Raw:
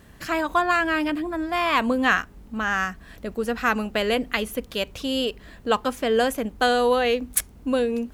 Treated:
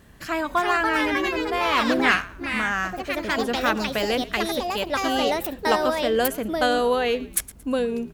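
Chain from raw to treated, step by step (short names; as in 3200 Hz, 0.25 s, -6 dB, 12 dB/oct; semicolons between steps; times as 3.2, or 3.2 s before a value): frequency-shifting echo 0.113 s, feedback 31%, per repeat -65 Hz, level -18.5 dB; echoes that change speed 0.401 s, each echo +4 st, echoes 2; gain -1.5 dB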